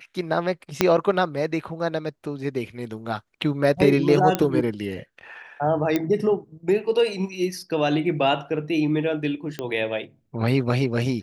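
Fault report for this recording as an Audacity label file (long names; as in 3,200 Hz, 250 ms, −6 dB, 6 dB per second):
0.810000	0.810000	click −2 dBFS
4.350000	4.350000	click −7 dBFS
5.960000	5.960000	click −9 dBFS
9.590000	9.590000	click −15 dBFS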